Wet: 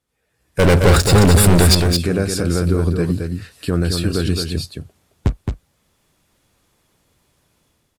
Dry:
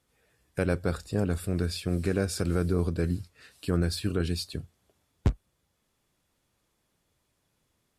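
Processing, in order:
0:00.59–0:01.75: leveller curve on the samples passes 5
brickwall limiter −17.5 dBFS, peak gain reduction 3.5 dB
automatic gain control gain up to 15 dB
on a send: single-tap delay 218 ms −5.5 dB
on the sum: level −4 dB

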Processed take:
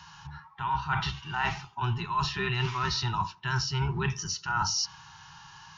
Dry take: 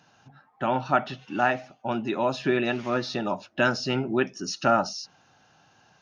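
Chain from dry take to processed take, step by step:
sub-octave generator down 1 octave, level 0 dB
harmonic and percussive parts rebalanced harmonic +9 dB
drawn EQ curve 110 Hz 0 dB, 150 Hz +5 dB, 250 Hz −21 dB, 380 Hz −7 dB, 550 Hz −29 dB, 920 Hz +13 dB, 1,500 Hz +4 dB, 5,400 Hz +9 dB, 7,700 Hz −3 dB
reversed playback
downward compressor 16 to 1, threshold −24 dBFS, peak gain reduction 18.5 dB
reversed playback
tape delay 87 ms, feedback 49%, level −21 dB, low-pass 1,100 Hz
wrong playback speed 24 fps film run at 25 fps
level −1.5 dB

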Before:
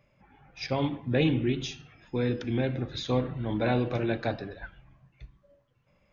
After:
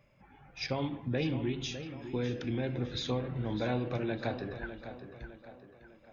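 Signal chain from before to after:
downward compressor 2.5 to 1, threshold −32 dBFS, peak gain reduction 8.5 dB
tape delay 605 ms, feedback 49%, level −9.5 dB, low-pass 3,800 Hz

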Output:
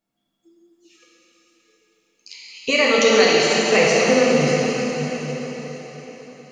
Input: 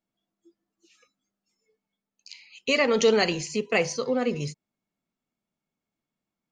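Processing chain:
0:02.70–0:03.67: low-shelf EQ 420 Hz −7 dB
dense smooth reverb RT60 4.9 s, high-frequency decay 0.95×, DRR −5.5 dB
level +3.5 dB

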